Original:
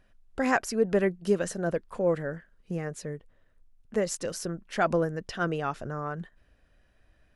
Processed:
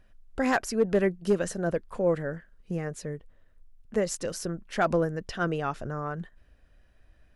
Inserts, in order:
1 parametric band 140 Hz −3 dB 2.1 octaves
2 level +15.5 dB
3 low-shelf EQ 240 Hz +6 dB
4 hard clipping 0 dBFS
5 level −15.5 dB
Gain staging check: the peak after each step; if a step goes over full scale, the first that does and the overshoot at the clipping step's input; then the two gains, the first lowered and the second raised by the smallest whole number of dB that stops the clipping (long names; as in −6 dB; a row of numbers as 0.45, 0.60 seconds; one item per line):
−10.0, +5.5, +6.5, 0.0, −15.5 dBFS
step 2, 6.5 dB
step 2 +8.5 dB, step 5 −8.5 dB